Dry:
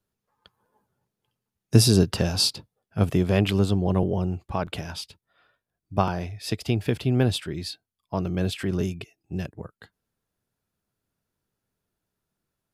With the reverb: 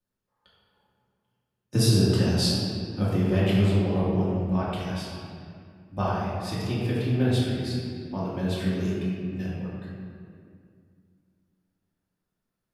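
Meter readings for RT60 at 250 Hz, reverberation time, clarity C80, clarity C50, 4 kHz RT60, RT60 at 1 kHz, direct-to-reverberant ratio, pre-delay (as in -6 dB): 3.0 s, 2.2 s, 0.0 dB, -2.5 dB, 1.4 s, 2.1 s, -9.0 dB, 3 ms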